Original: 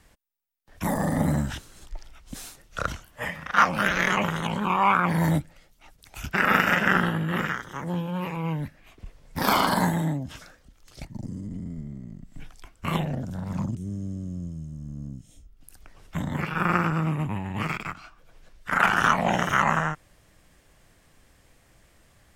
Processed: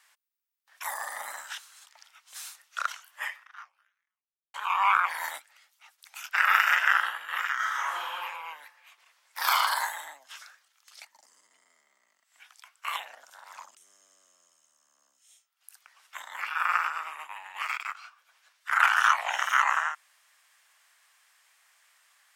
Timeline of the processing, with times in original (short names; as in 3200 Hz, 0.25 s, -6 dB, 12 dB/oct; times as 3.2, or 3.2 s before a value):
3.25–4.54 fade out exponential
7.55–8.14 reverb throw, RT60 1.2 s, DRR -9 dB
whole clip: HPF 980 Hz 24 dB/oct